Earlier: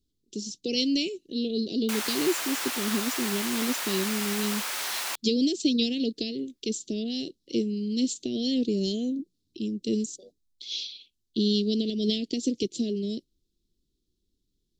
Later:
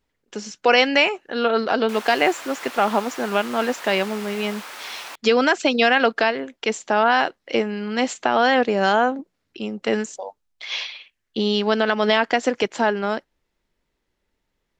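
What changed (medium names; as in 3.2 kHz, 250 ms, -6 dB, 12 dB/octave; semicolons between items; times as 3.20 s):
speech: remove elliptic band-stop 350–3800 Hz, stop band 60 dB; background: add treble shelf 3.6 kHz -12 dB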